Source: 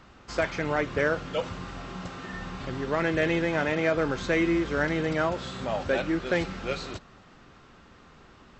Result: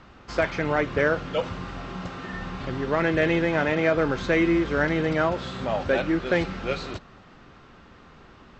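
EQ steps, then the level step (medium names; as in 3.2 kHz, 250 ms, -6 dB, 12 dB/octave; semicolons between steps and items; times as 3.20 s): distance through air 81 m; +3.5 dB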